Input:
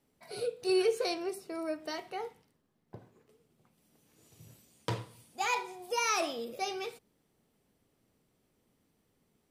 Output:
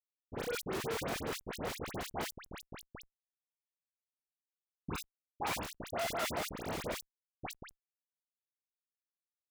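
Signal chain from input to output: 5.72–6.50 s: sorted samples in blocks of 64 samples; peak limiter -26.5 dBFS, peak gain reduction 7.5 dB; on a send: multi-tap echo 47/176/809 ms -11/-18.5/-11 dB; on the sum: tremolo 5.5 Hz, depth 85%; LPC vocoder at 8 kHz whisper; Schmitt trigger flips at -40.5 dBFS; high-pass 270 Hz 6 dB/octave; 2.96–5.01 s: comb 0.8 ms, depth 80%; phase dispersion highs, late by 72 ms, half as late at 1.8 kHz; decay stretcher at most 110 dB/s; trim +11.5 dB

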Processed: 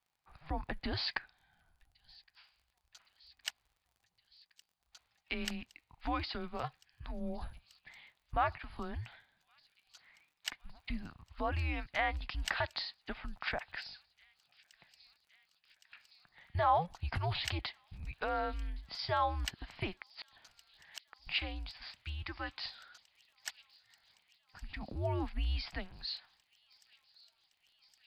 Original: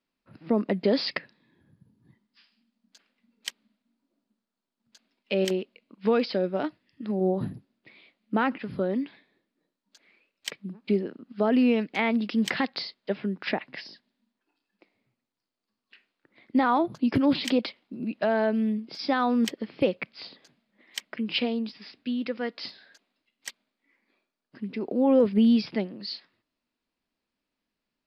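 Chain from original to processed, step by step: resonant low shelf 740 Hz -7 dB, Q 3; in parallel at -0.5 dB: compression, threshold -39 dBFS, peak gain reduction 20.5 dB; on the sum: frequency shift -170 Hz; 19.97–21.27 s: inverted gate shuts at -24 dBFS, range -33 dB; crackle 44 per s -51 dBFS; on a send: feedback echo behind a high-pass 1115 ms, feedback 82%, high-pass 3.4 kHz, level -20.5 dB; on the sum: trim -8 dB

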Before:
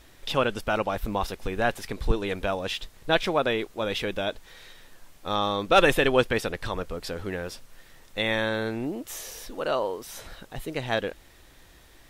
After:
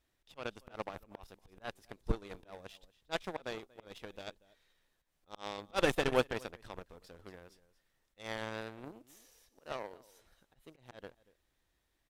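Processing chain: dynamic bell 2.1 kHz, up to -5 dB, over -41 dBFS, Q 0.76; slow attack 118 ms; delay 236 ms -13.5 dB; Chebyshev shaper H 7 -18 dB, 8 -44 dB, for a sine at -8.5 dBFS; trim -7 dB

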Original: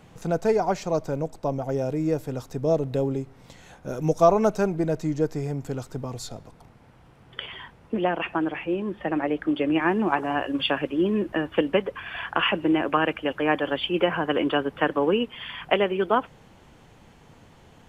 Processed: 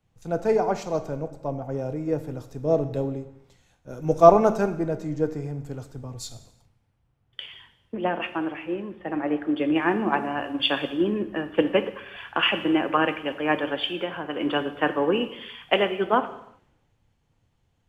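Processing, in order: 13.74–14.40 s: compression 3:1, threshold -24 dBFS, peak gain reduction 7 dB; gated-style reverb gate 420 ms falling, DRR 9 dB; three bands expanded up and down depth 70%; trim -1.5 dB

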